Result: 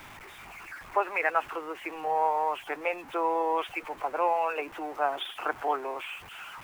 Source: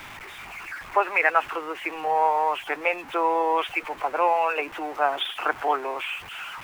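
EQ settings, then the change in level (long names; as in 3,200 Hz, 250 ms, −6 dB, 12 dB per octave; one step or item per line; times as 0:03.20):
parametric band 2,700 Hz −4.5 dB 2.4 octaves
−3.5 dB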